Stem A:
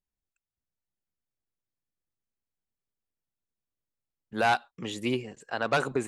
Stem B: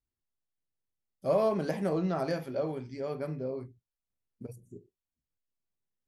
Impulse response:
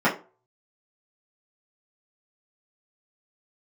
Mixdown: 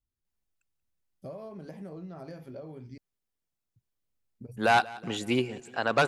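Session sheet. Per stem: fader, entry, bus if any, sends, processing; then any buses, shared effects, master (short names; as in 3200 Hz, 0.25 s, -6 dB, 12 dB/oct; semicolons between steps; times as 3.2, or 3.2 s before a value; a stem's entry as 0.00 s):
+2.0 dB, 0.25 s, no send, echo send -20.5 dB, dry
-4.5 dB, 0.00 s, muted 2.98–3.76, no send, no echo send, low shelf 260 Hz +8.5 dB; compressor 8:1, threshold -35 dBFS, peak gain reduction 15 dB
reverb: off
echo: feedback echo 0.183 s, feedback 50%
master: dry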